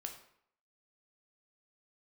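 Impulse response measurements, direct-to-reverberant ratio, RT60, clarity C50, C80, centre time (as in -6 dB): 3.5 dB, 0.65 s, 8.5 dB, 11.5 dB, 18 ms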